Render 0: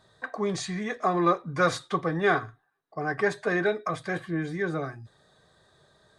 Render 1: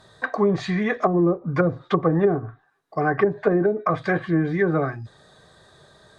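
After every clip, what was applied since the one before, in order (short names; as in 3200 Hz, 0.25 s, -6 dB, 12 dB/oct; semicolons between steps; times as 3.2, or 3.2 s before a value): treble ducked by the level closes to 360 Hz, closed at -21 dBFS; gain +9 dB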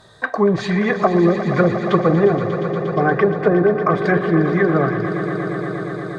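swelling echo 0.118 s, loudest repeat 5, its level -13 dB; gain +4 dB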